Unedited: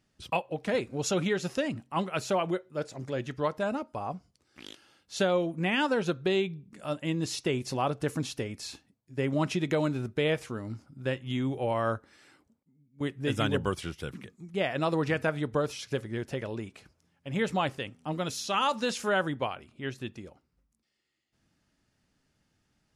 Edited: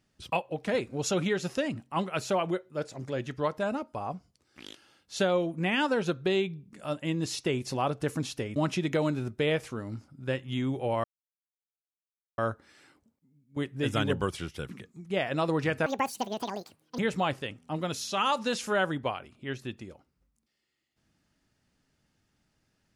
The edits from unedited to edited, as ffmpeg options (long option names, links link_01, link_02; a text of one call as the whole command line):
ffmpeg -i in.wav -filter_complex "[0:a]asplit=5[link_01][link_02][link_03][link_04][link_05];[link_01]atrim=end=8.562[link_06];[link_02]atrim=start=9.338:end=11.82,asetpts=PTS-STARTPTS,afade=type=out:start_time=2.478:duration=0.004:curve=hsin,apad=pad_dur=1.34[link_07];[link_03]atrim=start=11.82:end=15.304,asetpts=PTS-STARTPTS,afade=type=in:duration=0.004:curve=hsin[link_08];[link_04]atrim=start=15.3:end=17.35,asetpts=PTS-STARTPTS,asetrate=80262,aresample=44100,atrim=end_sample=49673,asetpts=PTS-STARTPTS[link_09];[link_05]atrim=start=17.346[link_10];[link_07][link_08]concat=n=2:v=0:a=1[link_11];[link_06][link_11]acrossfade=duration=0.004:curve1=hsin:curve2=hsin[link_12];[link_12][link_09]acrossfade=duration=0.004:curve1=hsin:curve2=hsin[link_13];[link_13][link_10]acrossfade=duration=0.004:curve1=hsin:curve2=hsin" out.wav